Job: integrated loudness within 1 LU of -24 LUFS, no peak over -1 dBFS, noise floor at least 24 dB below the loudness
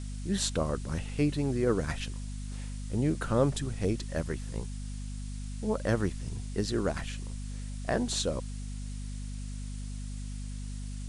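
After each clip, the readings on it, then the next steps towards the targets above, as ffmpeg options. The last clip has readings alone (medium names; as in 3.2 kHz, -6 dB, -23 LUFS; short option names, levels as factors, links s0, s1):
hum 50 Hz; highest harmonic 250 Hz; hum level -35 dBFS; noise floor -38 dBFS; noise floor target -58 dBFS; loudness -33.5 LUFS; peak level -12.5 dBFS; loudness target -24.0 LUFS
-> -af "bandreject=f=50:t=h:w=4,bandreject=f=100:t=h:w=4,bandreject=f=150:t=h:w=4,bandreject=f=200:t=h:w=4,bandreject=f=250:t=h:w=4"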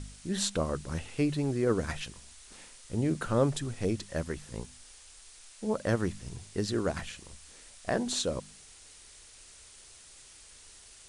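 hum not found; noise floor -54 dBFS; noise floor target -57 dBFS
-> -af "afftdn=nr=6:nf=-54"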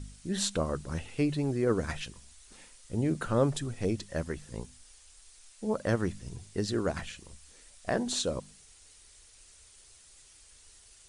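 noise floor -57 dBFS; loudness -32.5 LUFS; peak level -12.5 dBFS; loudness target -24.0 LUFS
-> -af "volume=2.66"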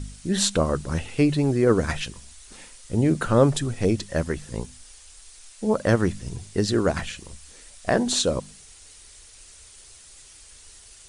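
loudness -24.0 LUFS; peak level -4.0 dBFS; noise floor -49 dBFS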